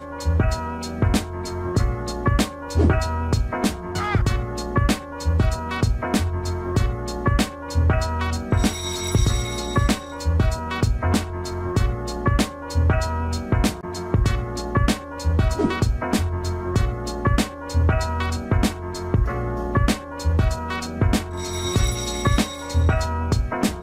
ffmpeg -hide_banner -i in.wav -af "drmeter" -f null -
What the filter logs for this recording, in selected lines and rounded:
Channel 1: DR: 10.1
Overall DR: 10.1